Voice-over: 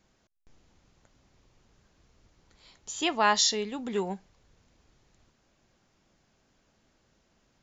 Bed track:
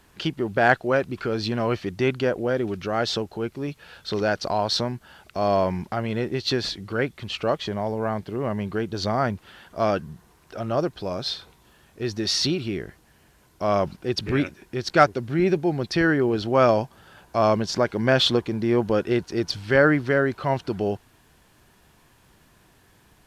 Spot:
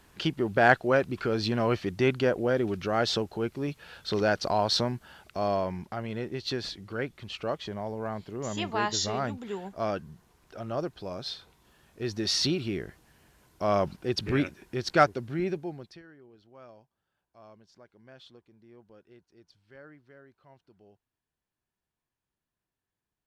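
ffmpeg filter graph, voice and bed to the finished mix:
ffmpeg -i stem1.wav -i stem2.wav -filter_complex "[0:a]adelay=5550,volume=-6dB[link_01];[1:a]volume=2.5dB,afade=type=out:start_time=5.07:duration=0.55:silence=0.501187,afade=type=in:start_time=11.43:duration=0.91:silence=0.595662,afade=type=out:start_time=14.88:duration=1.14:silence=0.0334965[link_02];[link_01][link_02]amix=inputs=2:normalize=0" out.wav

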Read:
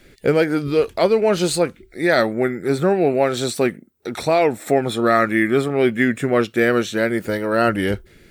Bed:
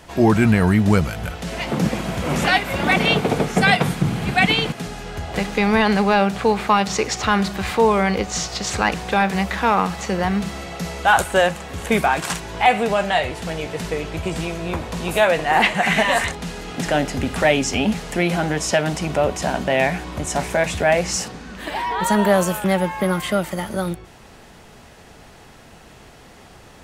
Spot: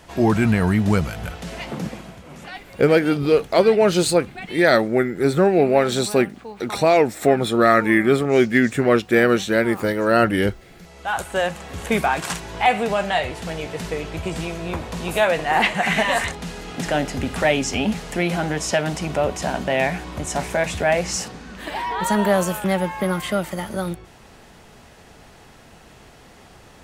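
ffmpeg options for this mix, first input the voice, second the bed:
ffmpeg -i stem1.wav -i stem2.wav -filter_complex "[0:a]adelay=2550,volume=1dB[link_01];[1:a]volume=14.5dB,afade=type=out:start_time=1.29:duration=0.94:silence=0.149624,afade=type=in:start_time=10.83:duration=0.91:silence=0.141254[link_02];[link_01][link_02]amix=inputs=2:normalize=0" out.wav

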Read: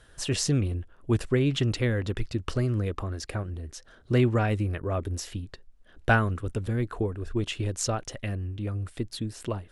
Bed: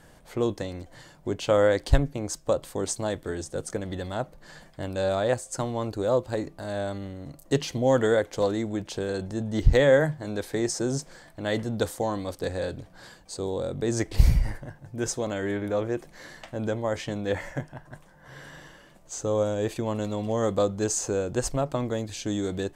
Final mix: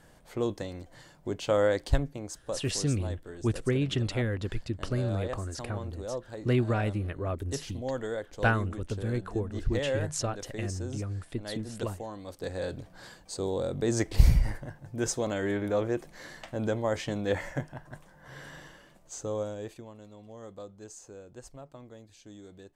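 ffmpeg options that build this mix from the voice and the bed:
ffmpeg -i stem1.wav -i stem2.wav -filter_complex "[0:a]adelay=2350,volume=-3.5dB[link_01];[1:a]volume=7dB,afade=type=out:start_time=1.74:duration=0.89:silence=0.398107,afade=type=in:start_time=12.18:duration=0.7:silence=0.281838,afade=type=out:start_time=18.53:duration=1.39:silence=0.112202[link_02];[link_01][link_02]amix=inputs=2:normalize=0" out.wav

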